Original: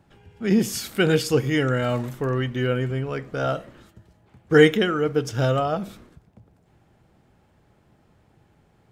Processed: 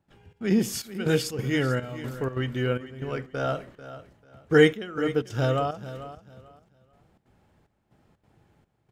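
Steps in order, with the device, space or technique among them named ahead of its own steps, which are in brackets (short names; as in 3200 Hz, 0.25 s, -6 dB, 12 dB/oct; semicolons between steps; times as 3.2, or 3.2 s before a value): trance gate with a delay (step gate ".xxx.xxxxx.." 184 bpm -12 dB; feedback echo 0.442 s, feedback 24%, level -14 dB); gain -3 dB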